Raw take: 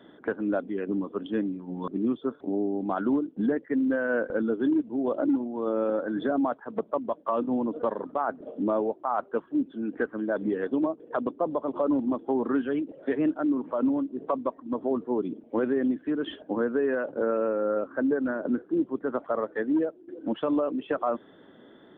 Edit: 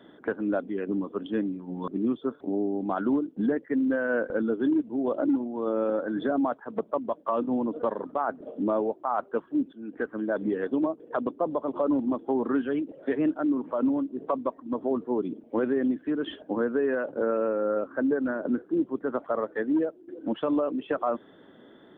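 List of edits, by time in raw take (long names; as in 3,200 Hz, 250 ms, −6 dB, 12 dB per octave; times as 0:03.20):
0:09.73–0:10.16: fade in, from −13.5 dB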